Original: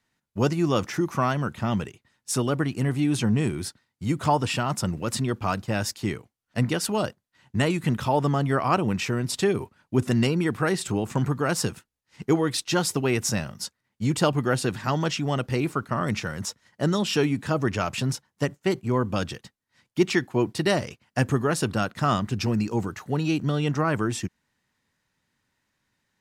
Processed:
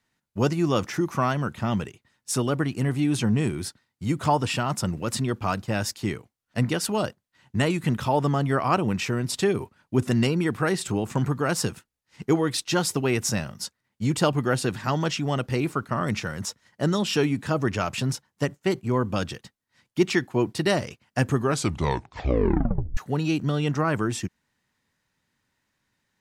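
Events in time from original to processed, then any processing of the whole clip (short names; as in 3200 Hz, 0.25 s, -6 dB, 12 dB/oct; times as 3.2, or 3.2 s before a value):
21.39 tape stop 1.58 s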